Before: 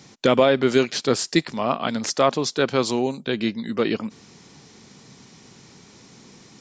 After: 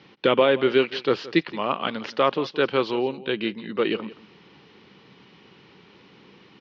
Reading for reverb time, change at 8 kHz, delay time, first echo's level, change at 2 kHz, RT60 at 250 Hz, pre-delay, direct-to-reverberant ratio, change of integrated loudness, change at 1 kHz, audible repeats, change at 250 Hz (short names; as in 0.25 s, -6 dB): none, under -20 dB, 0.172 s, -18.0 dB, 0.0 dB, none, none, none, -2.0 dB, -1.5 dB, 1, -3.5 dB